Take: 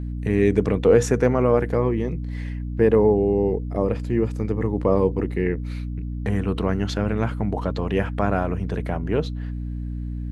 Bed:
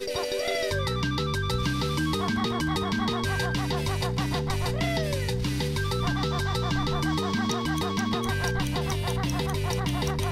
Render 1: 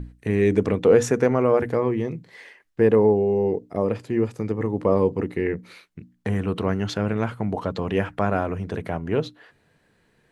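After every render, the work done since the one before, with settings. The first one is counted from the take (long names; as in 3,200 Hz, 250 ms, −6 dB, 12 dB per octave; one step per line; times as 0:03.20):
mains-hum notches 60/120/180/240/300 Hz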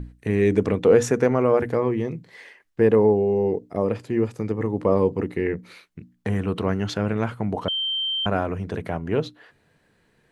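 0:07.68–0:08.26: beep over 3,130 Hz −22.5 dBFS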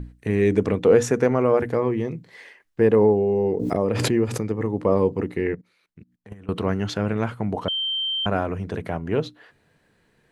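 0:02.97–0:04.41: background raised ahead of every attack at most 23 dB per second
0:05.55–0:06.49: output level in coarse steps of 22 dB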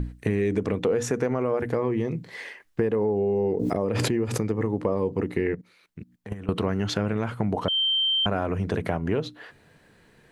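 in parallel at +0.5 dB: brickwall limiter −14 dBFS, peak gain reduction 9 dB
on the sum: downward compressor 5 to 1, threshold −22 dBFS, peak gain reduction 13 dB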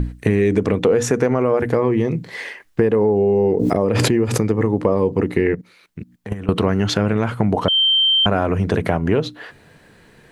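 level +8 dB
brickwall limiter −2 dBFS, peak gain reduction 1 dB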